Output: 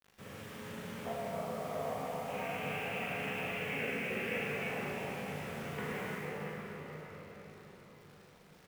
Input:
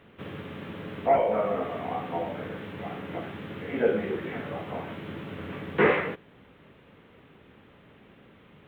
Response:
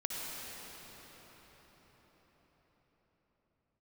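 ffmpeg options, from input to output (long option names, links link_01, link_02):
-filter_complex "[0:a]equalizer=frequency=320:width_type=o:width=0.5:gain=-9.5,acompressor=threshold=-32dB:ratio=6,asettb=1/sr,asplit=3[link_01][link_02][link_03];[link_01]atrim=end=2.284[link_04];[link_02]atrim=start=2.28:end=4.39,asetpts=PTS-STARTPTS,afade=type=in:duration=0.004:curve=qsin,afade=type=out:start_time=2.106:duration=0.004:curve=qsin,lowpass=frequency=2600:width_type=q:width=7.9[link_05];[link_03]atrim=start=4.386[link_06];[link_04][link_05]acrossfade=duration=0.004:curve1=hsin:curve2=qsin[link_07];[link_07][link_06]acrossfade=duration=0.004:curve1=qsin:curve2=hsin,acrusher=bits=7:mix=0:aa=0.000001,asplit=2[link_08][link_09];[link_09]adelay=40,volume=-4dB[link_10];[link_08][link_10]amix=inputs=2:normalize=0[link_11];[1:a]atrim=start_sample=2205[link_12];[link_11][link_12]afir=irnorm=-1:irlink=0,volume=-8dB"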